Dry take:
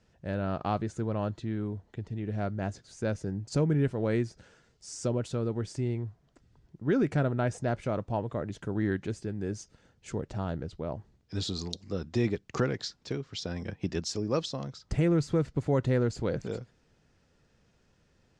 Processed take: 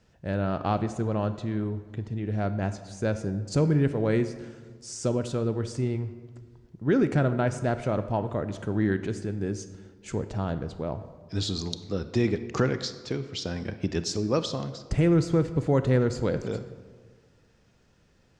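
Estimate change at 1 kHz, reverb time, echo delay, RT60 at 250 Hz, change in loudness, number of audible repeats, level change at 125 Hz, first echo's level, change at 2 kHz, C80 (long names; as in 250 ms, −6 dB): +4.0 dB, 1.6 s, no echo audible, 1.7 s, +4.0 dB, no echo audible, +3.5 dB, no echo audible, +4.0 dB, 13.5 dB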